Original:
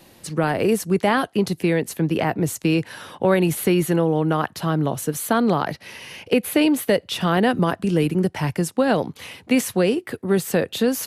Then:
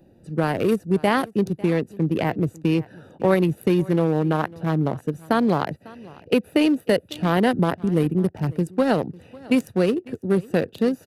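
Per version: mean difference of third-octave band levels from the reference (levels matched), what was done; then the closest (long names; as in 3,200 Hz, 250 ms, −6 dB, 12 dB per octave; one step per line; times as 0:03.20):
5.5 dB: adaptive Wiener filter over 41 samples
high-shelf EQ 8,700 Hz +7.5 dB
on a send: single-tap delay 549 ms −22 dB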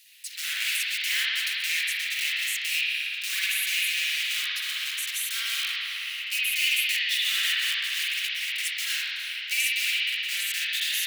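24.0 dB: one scale factor per block 3 bits
Butterworth high-pass 2,100 Hz 36 dB per octave
spring reverb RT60 3 s, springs 51 ms, chirp 30 ms, DRR −9.5 dB
level −2.5 dB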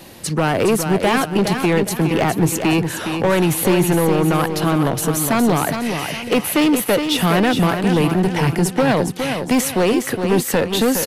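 8.0 dB: in parallel at −1 dB: downward compressor, threshold −30 dBFS, peak gain reduction 16 dB
on the sum: gain into a clipping stage and back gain 16 dB
repeating echo 413 ms, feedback 38%, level −7 dB
level +4 dB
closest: first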